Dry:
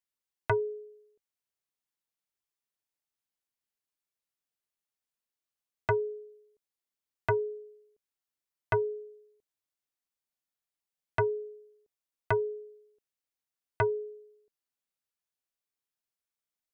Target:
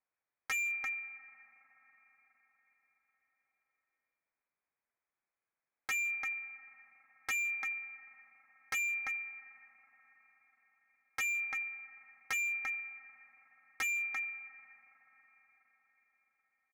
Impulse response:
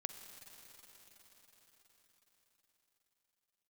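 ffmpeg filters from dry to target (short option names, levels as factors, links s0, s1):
-filter_complex "[0:a]acontrast=89,asplit=2[s0][s1];[1:a]atrim=start_sample=2205[s2];[s1][s2]afir=irnorm=-1:irlink=0,volume=0.211[s3];[s0][s3]amix=inputs=2:normalize=0,acompressor=threshold=0.0224:ratio=1.5,highpass=f=250:w=0.5412,highpass=f=250:w=1.3066,aecho=1:1:344:0.266,lowpass=f=2400:t=q:w=0.5098,lowpass=f=2400:t=q:w=0.6013,lowpass=f=2400:t=q:w=0.9,lowpass=f=2400:t=q:w=2.563,afreqshift=-2800,asoftclip=type=hard:threshold=0.0316,volume=0.75"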